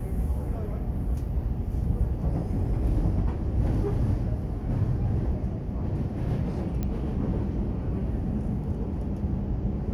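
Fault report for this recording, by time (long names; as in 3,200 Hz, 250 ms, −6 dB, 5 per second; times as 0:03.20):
0:06.83: click −18 dBFS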